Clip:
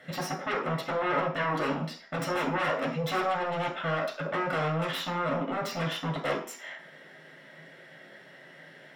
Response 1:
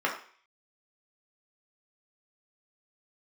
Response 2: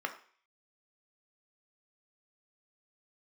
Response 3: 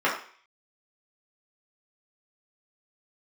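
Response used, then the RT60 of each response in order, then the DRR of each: 1; 0.45, 0.45, 0.45 s; -2.5, 5.0, -7.0 dB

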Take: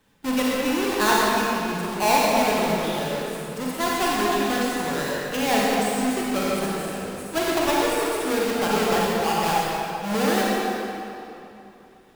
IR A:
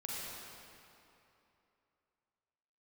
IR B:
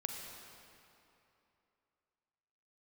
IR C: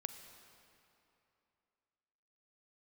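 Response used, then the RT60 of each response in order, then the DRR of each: A; 2.9, 2.9, 2.9 s; -5.5, 2.0, 8.5 dB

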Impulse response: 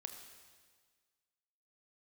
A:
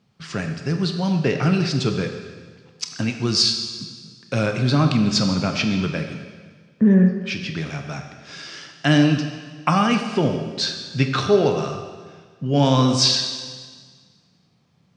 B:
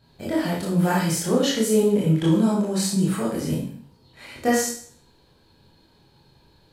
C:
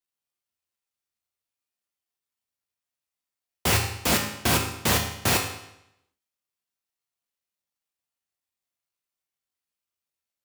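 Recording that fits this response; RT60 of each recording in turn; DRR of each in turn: A; 1.6, 0.50, 0.85 s; 5.0, -6.5, 1.0 dB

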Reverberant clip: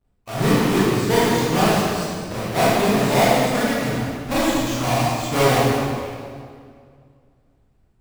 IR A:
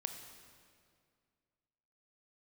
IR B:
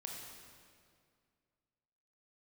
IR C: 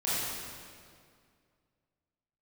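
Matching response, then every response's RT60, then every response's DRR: C; 2.2, 2.2, 2.2 s; 6.0, -0.5, -10.5 dB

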